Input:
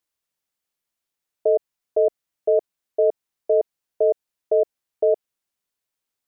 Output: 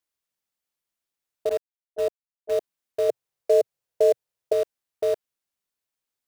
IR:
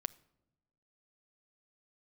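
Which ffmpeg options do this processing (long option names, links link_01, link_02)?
-filter_complex "[0:a]asettb=1/sr,asplit=3[link_01][link_02][link_03];[link_01]atrim=end=1.494[link_04];[link_02]atrim=start=1.49:end=2.52,asetpts=PTS-STARTPTS,afade=type=in:duration=0.004:curve=qsin,afade=type=out:start_time=1.026:duration=0.004:curve=qsin,agate=range=-22dB:threshold=-17dB:ratio=16:detection=peak[link_05];[link_03]atrim=start=2.516[link_06];[link_04][link_05]acrossfade=duration=0.004:curve1=hsin:curve2=qsin[link_07];[link_07][link_06]acrossfade=duration=0.004:curve1=qsin:curve2=hsin,asettb=1/sr,asplit=3[link_08][link_09][link_10];[link_08]atrim=end=3.094[link_11];[link_09]atrim=start=3.09:end=4.53,asetpts=PTS-STARTPTS,afade=type=in:duration=0.004:curve=qsin,afade=type=out:start_time=1.436:duration=0.004:curve=qsin,equalizer=frequency=125:width_type=o:width=1:gain=9,equalizer=frequency=250:width_type=o:width=1:gain=-7,equalizer=frequency=500:width_type=o:width=1:gain=8[link_12];[link_10]atrim=start=4.526[link_13];[link_11][link_12]acrossfade=duration=0.004:curve1=hsin:curve2=qsin[link_14];[link_14][link_13]acrossfade=duration=0.004:curve1=qsin:curve2=hsin,asplit=2[link_15][link_16];[link_16]aeval=exprs='(mod(10*val(0)+1,2)-1)/10':channel_layout=same,volume=-12dB[link_17];[link_15][link_17]amix=inputs=2:normalize=0,volume=-5dB"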